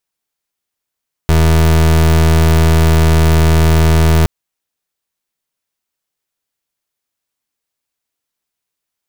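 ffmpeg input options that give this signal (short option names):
-f lavfi -i "aevalsrc='0.355*(2*lt(mod(80.4*t,1),0.3)-1)':d=2.97:s=44100"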